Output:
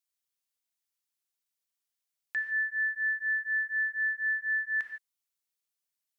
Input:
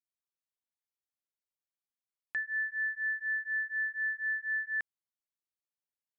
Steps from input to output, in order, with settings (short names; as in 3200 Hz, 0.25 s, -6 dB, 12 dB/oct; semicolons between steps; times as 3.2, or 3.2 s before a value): high shelf 2000 Hz +11.5 dB; non-linear reverb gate 0.18 s flat, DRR 5 dB; gain -3.5 dB